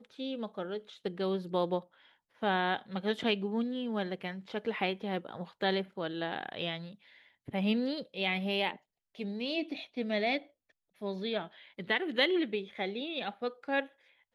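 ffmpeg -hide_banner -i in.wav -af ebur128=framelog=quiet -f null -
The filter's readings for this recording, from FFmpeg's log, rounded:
Integrated loudness:
  I:         -34.0 LUFS
  Threshold: -44.5 LUFS
Loudness range:
  LRA:         2.4 LU
  Threshold: -54.4 LUFS
  LRA low:   -35.8 LUFS
  LRA high:  -33.4 LUFS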